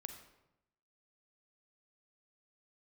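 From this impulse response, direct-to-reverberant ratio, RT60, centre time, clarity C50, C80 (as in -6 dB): 6.0 dB, 0.90 s, 20 ms, 7.5 dB, 9.5 dB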